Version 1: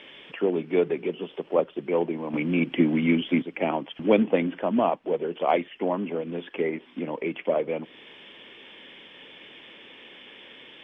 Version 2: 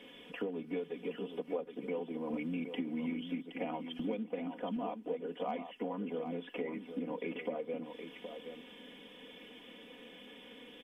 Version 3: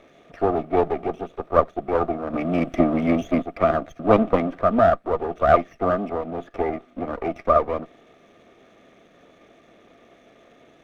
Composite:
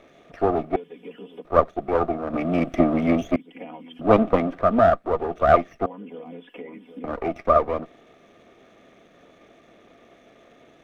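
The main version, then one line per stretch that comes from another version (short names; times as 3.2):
3
0.76–1.45 from 2
3.36–4.01 from 2
5.86–7.04 from 2
not used: 1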